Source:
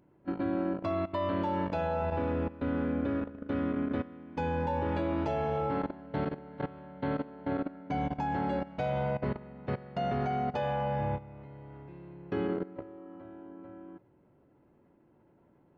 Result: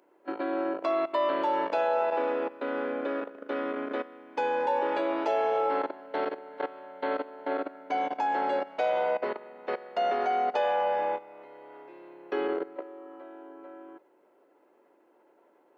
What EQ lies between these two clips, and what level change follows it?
high-pass 380 Hz 24 dB/octave; +6.0 dB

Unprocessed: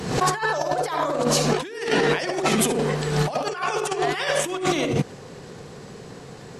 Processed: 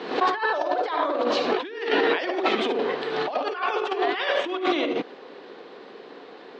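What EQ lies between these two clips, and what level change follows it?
elliptic band-pass 290–3800 Hz, stop band 50 dB; 0.0 dB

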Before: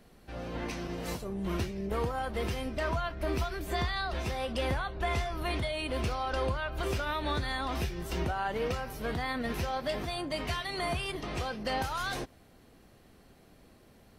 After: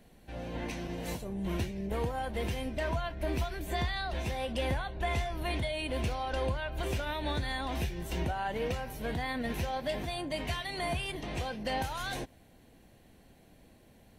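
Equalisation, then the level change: graphic EQ with 31 bands 400 Hz -4 dB, 1.25 kHz -11 dB, 5 kHz -6 dB; 0.0 dB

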